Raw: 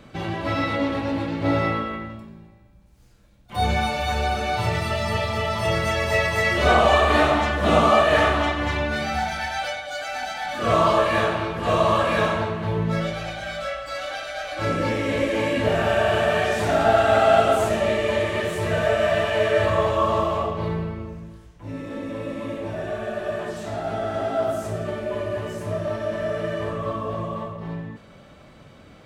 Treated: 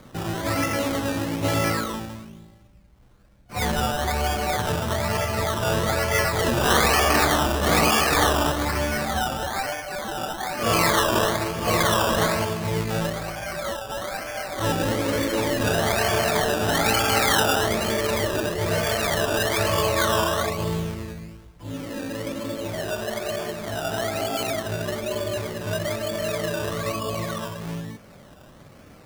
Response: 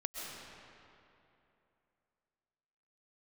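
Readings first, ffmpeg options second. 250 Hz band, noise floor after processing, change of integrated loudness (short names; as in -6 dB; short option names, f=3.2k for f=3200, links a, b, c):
0.0 dB, -48 dBFS, -1.0 dB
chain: -af "acrusher=samples=16:mix=1:aa=0.000001:lfo=1:lforange=9.6:lforate=1.1,afftfilt=real='re*lt(hypot(re,im),0.708)':imag='im*lt(hypot(re,im),0.708)':win_size=1024:overlap=0.75"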